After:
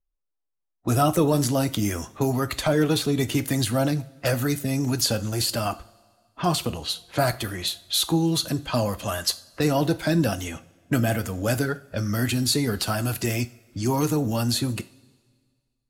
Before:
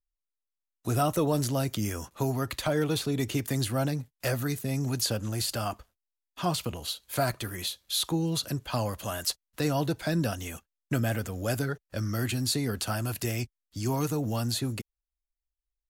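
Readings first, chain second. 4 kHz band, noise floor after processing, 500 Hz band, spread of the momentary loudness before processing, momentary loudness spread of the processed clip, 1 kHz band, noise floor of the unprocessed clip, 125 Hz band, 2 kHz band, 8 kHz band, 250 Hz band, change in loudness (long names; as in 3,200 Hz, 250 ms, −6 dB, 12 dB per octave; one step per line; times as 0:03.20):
+6.0 dB, −79 dBFS, +6.0 dB, 6 LU, 7 LU, +5.5 dB, below −85 dBFS, +4.5 dB, +5.5 dB, +5.0 dB, +6.5 dB, +5.5 dB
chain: spectral magnitudes quantised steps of 15 dB
low-pass that shuts in the quiet parts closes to 920 Hz, open at −29 dBFS
coupled-rooms reverb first 0.37 s, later 1.8 s, from −18 dB, DRR 12 dB
level +6 dB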